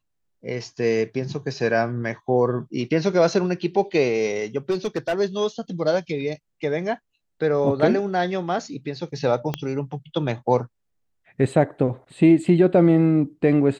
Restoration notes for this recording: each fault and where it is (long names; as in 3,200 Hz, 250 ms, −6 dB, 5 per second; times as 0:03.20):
0:04.70–0:05.14: clipping −18.5 dBFS
0:09.54: click −11 dBFS